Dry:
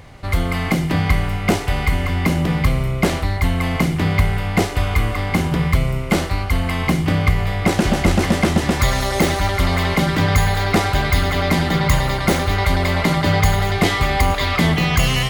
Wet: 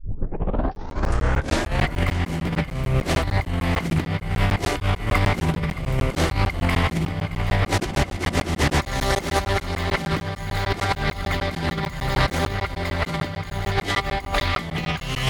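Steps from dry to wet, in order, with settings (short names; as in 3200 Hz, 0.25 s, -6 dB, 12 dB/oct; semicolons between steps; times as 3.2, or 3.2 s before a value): tape start at the beginning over 1.94 s; negative-ratio compressor -22 dBFS, ratio -0.5; split-band echo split 910 Hz, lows 0.355 s, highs 0.622 s, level -15.5 dB; crackling interface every 0.15 s, samples 512, zero, from 0.75; Doppler distortion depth 0.26 ms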